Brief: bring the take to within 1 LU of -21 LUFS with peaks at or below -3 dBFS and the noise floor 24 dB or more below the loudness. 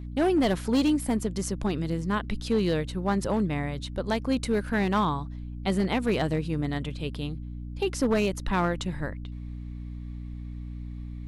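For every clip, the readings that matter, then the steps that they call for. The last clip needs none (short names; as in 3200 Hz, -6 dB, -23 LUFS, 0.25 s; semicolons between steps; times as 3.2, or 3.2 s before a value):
clipped 1.2%; flat tops at -18.0 dBFS; hum 60 Hz; harmonics up to 300 Hz; hum level -34 dBFS; loudness -28.0 LUFS; peak -18.0 dBFS; loudness target -21.0 LUFS
-> clip repair -18 dBFS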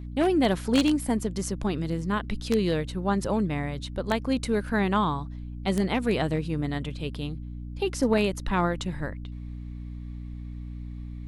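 clipped 0.0%; hum 60 Hz; harmonics up to 300 Hz; hum level -34 dBFS
-> notches 60/120/180/240/300 Hz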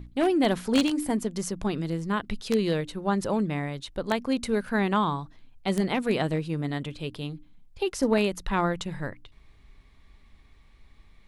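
hum none; loudness -28.0 LUFS; peak -8.5 dBFS; loudness target -21.0 LUFS
-> gain +7 dB; limiter -3 dBFS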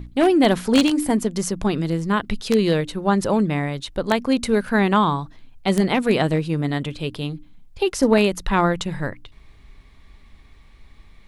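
loudness -21.0 LUFS; peak -3.0 dBFS; noise floor -48 dBFS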